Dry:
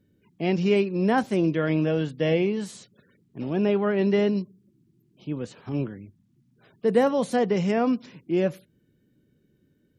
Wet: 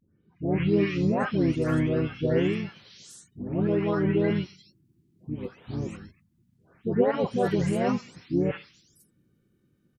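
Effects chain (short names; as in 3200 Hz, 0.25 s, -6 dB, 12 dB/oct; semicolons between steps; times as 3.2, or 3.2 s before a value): spectral delay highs late, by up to 0.444 s; harmoniser -12 st -11 dB, -4 st -3 dB; gain -3 dB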